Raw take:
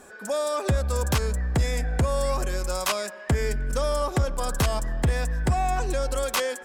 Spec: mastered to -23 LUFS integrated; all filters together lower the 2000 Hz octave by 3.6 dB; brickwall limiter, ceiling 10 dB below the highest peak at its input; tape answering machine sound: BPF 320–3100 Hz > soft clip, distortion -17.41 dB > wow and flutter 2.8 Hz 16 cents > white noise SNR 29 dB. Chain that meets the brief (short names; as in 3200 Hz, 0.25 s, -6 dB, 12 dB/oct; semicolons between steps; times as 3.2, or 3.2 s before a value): bell 2000 Hz -4 dB; limiter -25 dBFS; BPF 320–3100 Hz; soft clip -30 dBFS; wow and flutter 2.8 Hz 16 cents; white noise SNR 29 dB; gain +16 dB